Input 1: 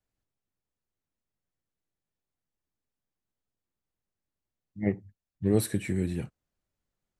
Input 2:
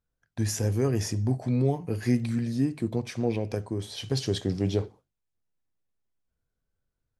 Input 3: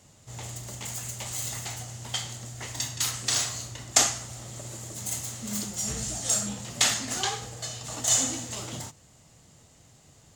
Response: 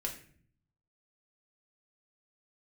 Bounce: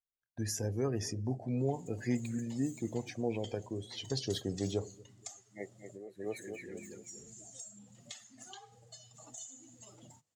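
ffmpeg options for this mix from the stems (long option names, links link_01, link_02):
-filter_complex "[0:a]acrossover=split=370 3900:gain=0.126 1 0.2[link_01][link_02][link_03];[link_01][link_02][link_03]amix=inputs=3:normalize=0,adelay=500,volume=-3dB,asplit=2[link_04][link_05];[link_05]volume=-3.5dB[link_06];[1:a]volume=-4.5dB,asplit=3[link_07][link_08][link_09];[link_08]volume=-21.5dB[link_10];[2:a]highpass=95,adelay=1300,volume=-10dB[link_11];[link_09]apad=whole_len=339344[link_12];[link_04][link_12]sidechaincompress=threshold=-51dB:ratio=8:attack=16:release=731[link_13];[link_13][link_11]amix=inputs=2:normalize=0,acompressor=threshold=-44dB:ratio=5,volume=0dB[link_14];[link_06][link_10]amix=inputs=2:normalize=0,aecho=0:1:236|472|708|944|1180|1416:1|0.44|0.194|0.0852|0.0375|0.0165[link_15];[link_07][link_14][link_15]amix=inputs=3:normalize=0,afftdn=noise_reduction=17:noise_floor=-46,lowshelf=frequency=260:gain=-7"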